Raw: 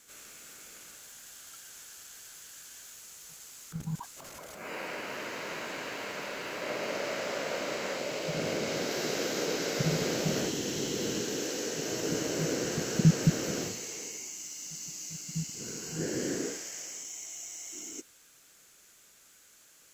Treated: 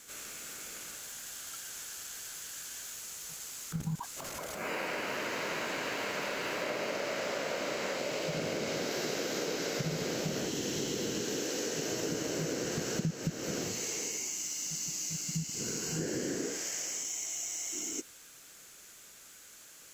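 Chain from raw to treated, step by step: compressor 6:1, threshold -37 dBFS, peak gain reduction 19 dB; gain +5.5 dB

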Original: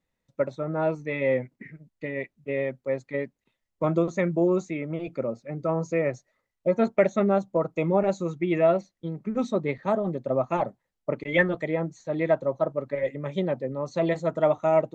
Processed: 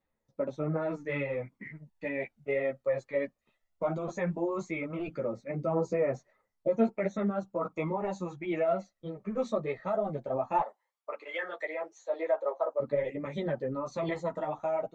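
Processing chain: bell 900 Hz +7 dB 2.4 oct; AGC gain up to 6 dB; limiter -12.5 dBFS, peak gain reduction 11 dB; phaser 0.16 Hz, delay 1.8 ms, feedback 45%; 10.61–12.8 HPF 480 Hz 24 dB/oct; ensemble effect; gain -6.5 dB

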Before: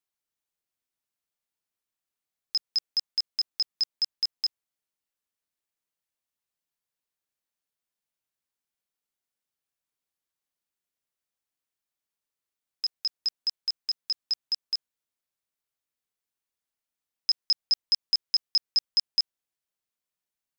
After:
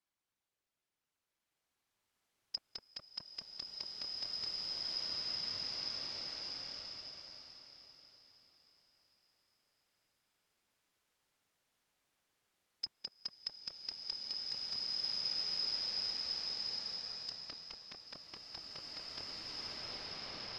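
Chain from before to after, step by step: LPF 3700 Hz 6 dB/oct; treble ducked by the level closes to 930 Hz, closed at -29.5 dBFS; limiter -29 dBFS, peak gain reduction 9 dB; whisperiser; bloom reverb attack 2.37 s, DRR -10 dB; gain +3 dB

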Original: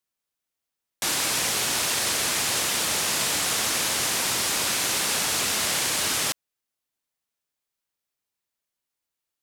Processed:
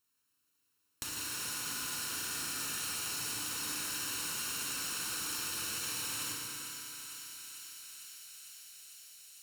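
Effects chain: minimum comb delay 0.73 ms; HPF 59 Hz; high shelf 4100 Hz +3.5 dB; limiter -20.5 dBFS, peak gain reduction 8.5 dB; compressor 8:1, threshold -43 dBFS, peak gain reduction 16 dB; thinning echo 0.45 s, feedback 84%, high-pass 1100 Hz, level -10 dB; FDN reverb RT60 3.5 s, high-frequency decay 0.65×, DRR -1 dB; lo-fi delay 0.153 s, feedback 55%, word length 10-bit, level -9.5 dB; gain +3 dB

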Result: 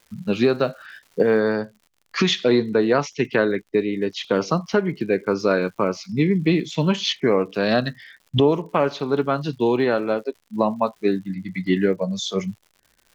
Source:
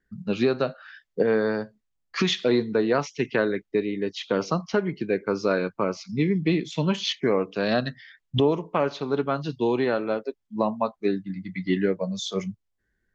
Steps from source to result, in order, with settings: crackle 340/s -46 dBFS, from 1.4 s 61/s, from 3.93 s 160/s; gain +4 dB

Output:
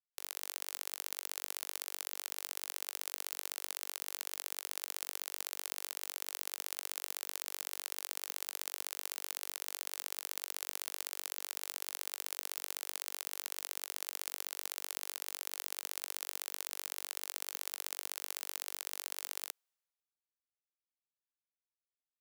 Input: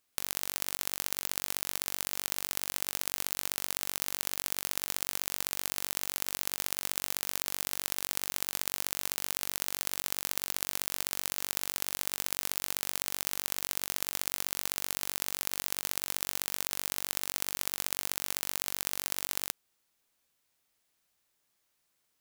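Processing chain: HPF 440 Hz 24 dB/oct; three-band expander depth 70%; gain -7 dB

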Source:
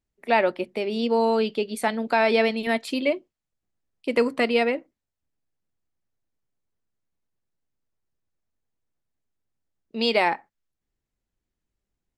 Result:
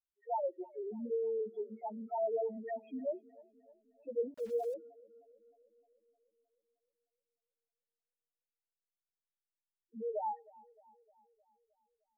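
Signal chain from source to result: LPF 2700 Hz 24 dB/oct; low shelf 170 Hz -12 dB; loudest bins only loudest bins 1; tape echo 0.308 s, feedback 62%, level -21.5 dB, low-pass 1700 Hz; 4.34–4.74 sample gate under -47 dBFS; gain -5.5 dB

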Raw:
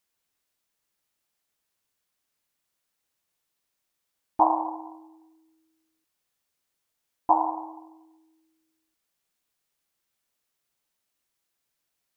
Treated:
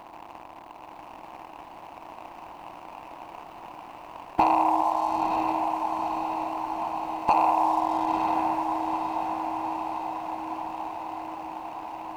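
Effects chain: per-bin compression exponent 0.4; 4.81–7.34 comb 4.7 ms, depth 59%; sample leveller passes 2; compressor 2.5:1, threshold -28 dBFS, peak gain reduction 12.5 dB; diffused feedback echo 0.945 s, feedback 69%, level -4.5 dB; gain +3.5 dB

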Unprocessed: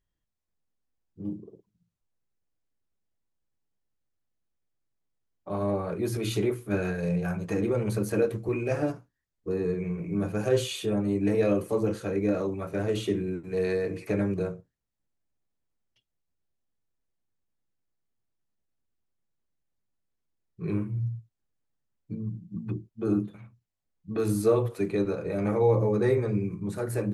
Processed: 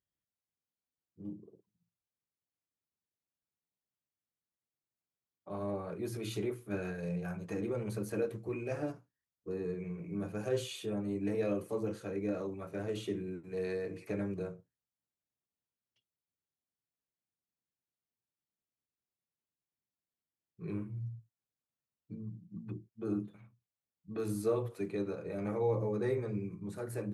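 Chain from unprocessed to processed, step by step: HPF 87 Hz; gain -9 dB

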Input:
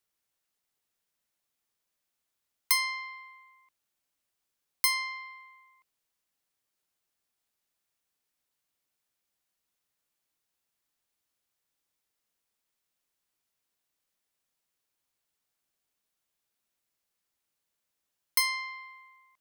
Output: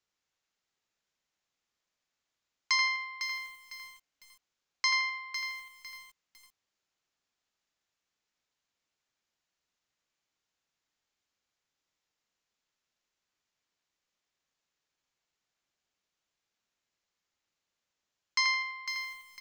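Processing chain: downsampling 16000 Hz; narrowing echo 84 ms, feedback 44%, band-pass 2000 Hz, level -4 dB; lo-fi delay 0.503 s, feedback 35%, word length 8-bit, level -8.5 dB

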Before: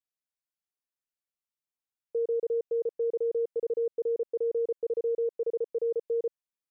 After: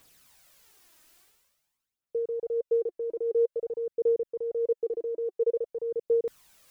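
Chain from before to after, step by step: reverse; upward compressor, threshold -36 dBFS; reverse; phaser 0.49 Hz, delay 3.3 ms, feedback 50%

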